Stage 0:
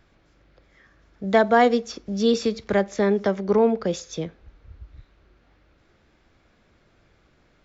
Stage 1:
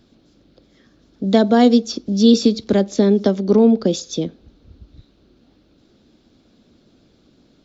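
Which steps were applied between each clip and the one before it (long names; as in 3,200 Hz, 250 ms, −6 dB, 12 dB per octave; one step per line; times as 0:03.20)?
low-shelf EQ 66 Hz −8 dB
harmonic and percussive parts rebalanced percussive +4 dB
octave-band graphic EQ 250/1,000/2,000/4,000 Hz +11/−5/−11/+8 dB
level +1.5 dB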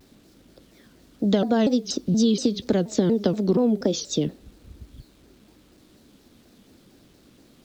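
downward compressor 6 to 1, threshold −17 dBFS, peak gain reduction 10 dB
bit reduction 10 bits
pitch modulation by a square or saw wave saw down 4.2 Hz, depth 250 cents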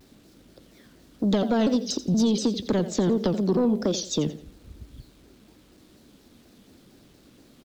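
repeating echo 86 ms, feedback 31%, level −14.5 dB
soft clipping −14.5 dBFS, distortion −16 dB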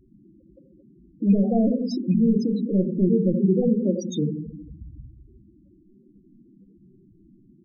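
loose part that buzzes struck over −26 dBFS, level −20 dBFS
rectangular room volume 330 cubic metres, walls mixed, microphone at 0.86 metres
spectral peaks only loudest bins 8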